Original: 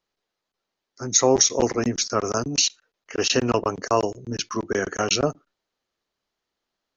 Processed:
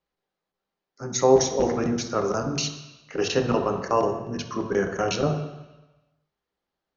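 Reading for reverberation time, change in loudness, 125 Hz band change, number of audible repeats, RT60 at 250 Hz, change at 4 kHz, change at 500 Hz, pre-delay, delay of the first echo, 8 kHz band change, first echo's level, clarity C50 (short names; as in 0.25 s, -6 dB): 1.0 s, -2.5 dB, +1.5 dB, none, 0.95 s, -7.5 dB, +1.0 dB, 3 ms, none, n/a, none, 7.5 dB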